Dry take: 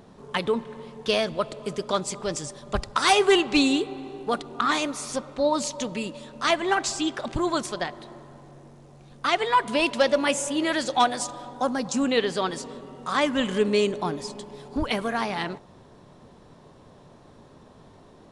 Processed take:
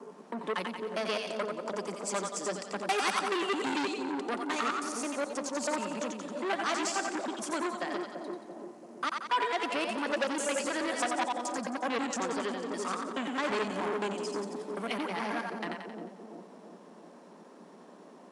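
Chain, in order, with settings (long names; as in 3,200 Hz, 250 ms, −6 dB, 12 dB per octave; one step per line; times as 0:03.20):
slices reordered back to front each 107 ms, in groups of 3
parametric band 3,700 Hz −7.5 dB 0.44 octaves
in parallel at +0.5 dB: downward compressor, threshold −33 dBFS, peak gain reduction 17 dB
on the sum: Butterworth high-pass 180 Hz 72 dB per octave
on a send: echo with a time of its own for lows and highs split 670 Hz, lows 339 ms, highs 89 ms, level −4.5 dB
on the sum: saturating transformer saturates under 2,300 Hz
level −8 dB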